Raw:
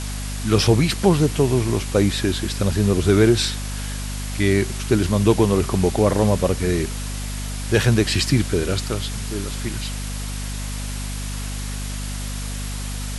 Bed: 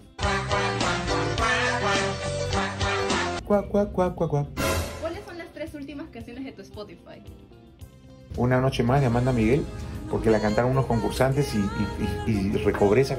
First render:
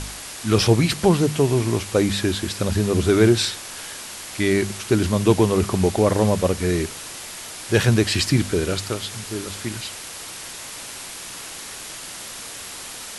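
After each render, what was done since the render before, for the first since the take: de-hum 50 Hz, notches 5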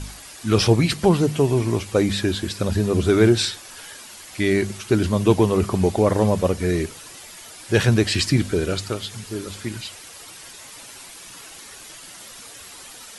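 noise reduction 9 dB, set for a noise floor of -36 dBFS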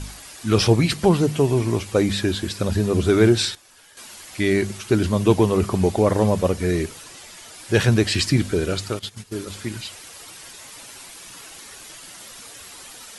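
3.55–3.97 s: gain -11.5 dB; 7.04–7.54 s: low-pass 10 kHz; 8.99–9.50 s: gate -34 dBFS, range -13 dB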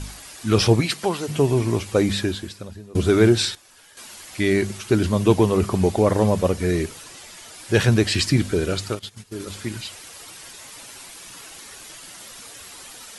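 0.80–1.28 s: high-pass 350 Hz -> 1.1 kHz 6 dB/octave; 2.18–2.95 s: fade out quadratic, to -22 dB; 8.95–9.40 s: gain -3.5 dB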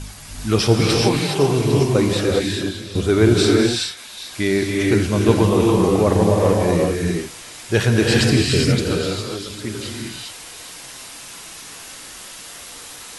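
repeats whose band climbs or falls 403 ms, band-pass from 2.9 kHz, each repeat 0.7 oct, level -11 dB; gated-style reverb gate 440 ms rising, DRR -1.5 dB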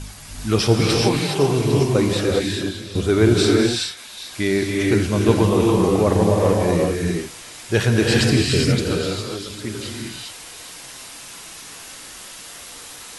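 trim -1 dB

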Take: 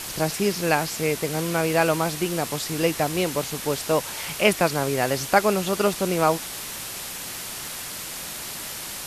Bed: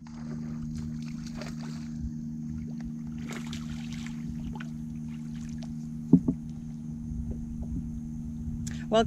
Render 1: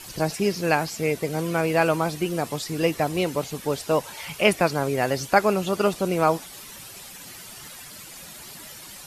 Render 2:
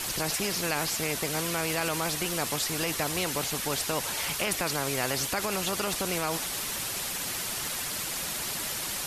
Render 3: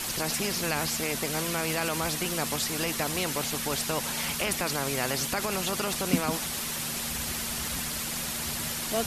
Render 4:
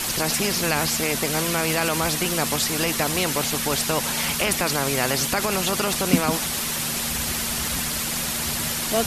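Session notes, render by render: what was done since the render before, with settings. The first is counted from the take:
noise reduction 11 dB, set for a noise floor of -34 dBFS
peak limiter -15 dBFS, peak gain reduction 11 dB; spectrum-flattening compressor 2:1
add bed -6.5 dB
trim +6.5 dB

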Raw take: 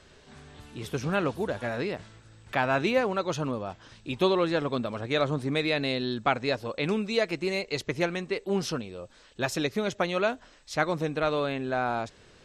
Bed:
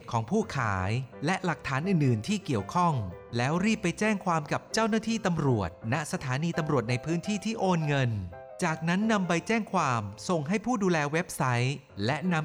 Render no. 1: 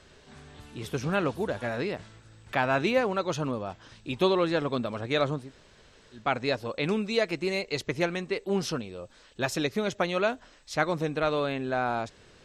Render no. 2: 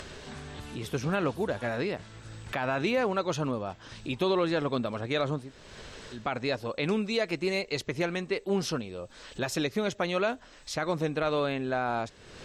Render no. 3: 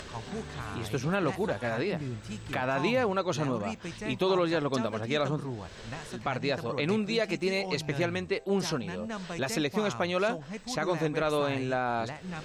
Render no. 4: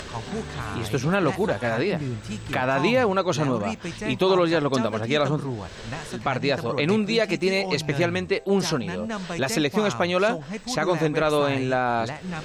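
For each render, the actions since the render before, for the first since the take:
5.40–6.23 s: room tone, crossfade 0.24 s
peak limiter -18 dBFS, peak gain reduction 8 dB; upward compressor, threshold -33 dBFS
add bed -11.5 dB
trim +6.5 dB

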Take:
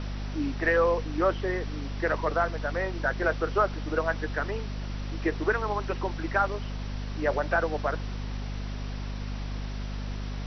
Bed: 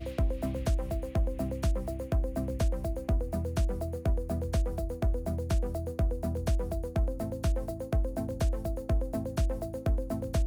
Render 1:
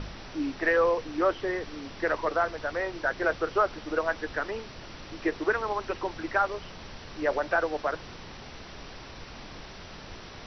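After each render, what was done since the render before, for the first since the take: de-hum 50 Hz, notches 5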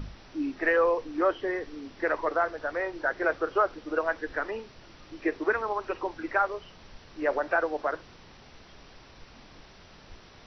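noise print and reduce 8 dB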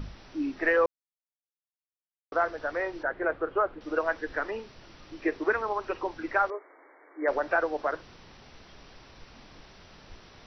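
0.86–2.32 s: mute; 3.03–3.81 s: distance through air 450 m; 6.50–7.28 s: brick-wall FIR band-pass 270–2300 Hz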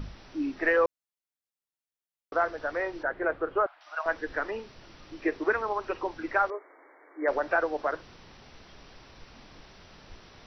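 3.66–4.06 s: elliptic high-pass 670 Hz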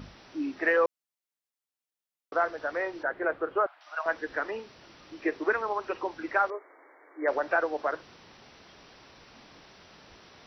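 high-pass 180 Hz 6 dB/octave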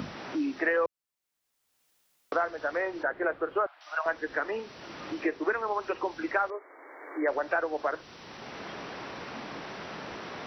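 three bands compressed up and down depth 70%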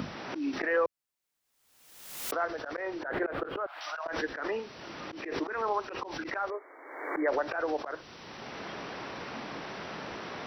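slow attack 132 ms; swell ahead of each attack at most 54 dB/s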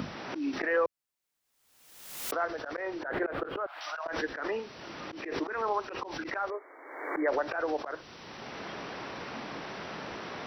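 no audible change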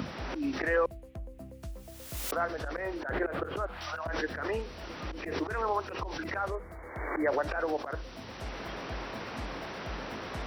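add bed -13.5 dB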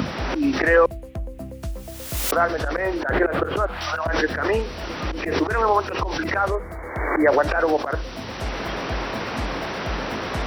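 trim +11.5 dB

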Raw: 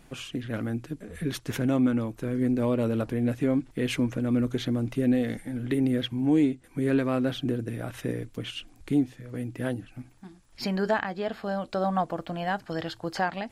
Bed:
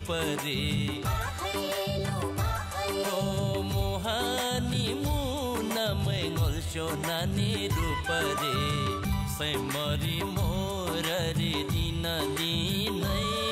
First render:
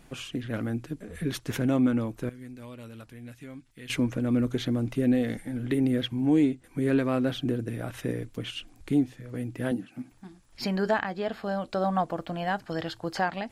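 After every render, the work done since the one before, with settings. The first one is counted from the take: 2.29–3.90 s: amplifier tone stack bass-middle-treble 5-5-5; 9.71–10.12 s: resonant high-pass 210 Hz, resonance Q 2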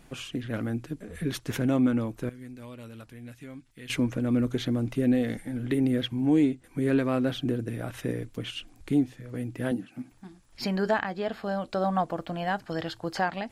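no audible change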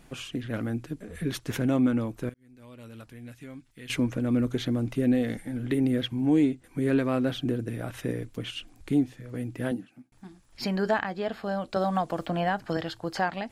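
2.34–2.97 s: fade in; 9.65–10.12 s: fade out; 11.76–12.77 s: three bands compressed up and down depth 100%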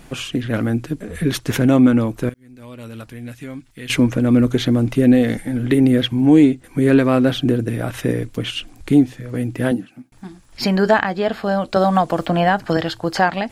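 trim +11 dB

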